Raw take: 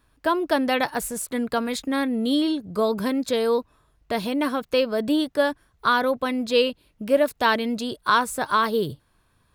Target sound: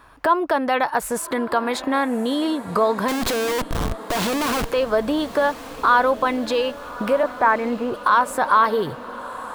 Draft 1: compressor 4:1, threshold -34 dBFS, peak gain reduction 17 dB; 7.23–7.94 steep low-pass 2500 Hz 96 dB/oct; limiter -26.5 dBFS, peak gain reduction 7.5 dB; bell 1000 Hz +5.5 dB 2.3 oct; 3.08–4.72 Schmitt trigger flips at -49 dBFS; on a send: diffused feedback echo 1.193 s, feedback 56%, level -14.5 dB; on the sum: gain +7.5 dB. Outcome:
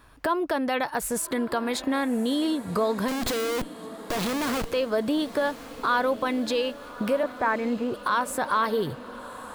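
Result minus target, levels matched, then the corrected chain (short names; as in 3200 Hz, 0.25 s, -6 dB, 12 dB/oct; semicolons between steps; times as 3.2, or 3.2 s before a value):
1000 Hz band -3.0 dB
compressor 4:1, threshold -34 dBFS, peak gain reduction 17 dB; 7.23–7.94 steep low-pass 2500 Hz 96 dB/oct; limiter -26.5 dBFS, peak gain reduction 7.5 dB; bell 1000 Hz +14.5 dB 2.3 oct; 3.08–4.72 Schmitt trigger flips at -49 dBFS; on a send: diffused feedback echo 1.193 s, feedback 56%, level -14.5 dB; on the sum: gain +7.5 dB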